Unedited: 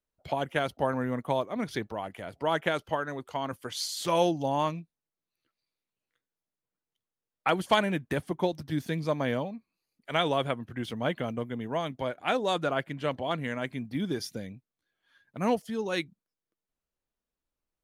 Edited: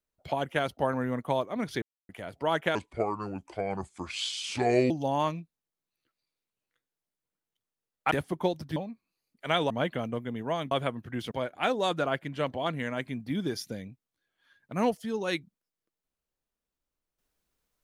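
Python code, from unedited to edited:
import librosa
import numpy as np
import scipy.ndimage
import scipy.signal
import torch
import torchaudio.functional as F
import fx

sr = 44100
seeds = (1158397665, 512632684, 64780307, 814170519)

y = fx.edit(x, sr, fx.silence(start_s=1.82, length_s=0.27),
    fx.speed_span(start_s=2.75, length_s=1.55, speed=0.72),
    fx.cut(start_s=7.51, length_s=0.59),
    fx.cut(start_s=8.75, length_s=0.66),
    fx.move(start_s=10.35, length_s=0.6, to_s=11.96), tone=tone)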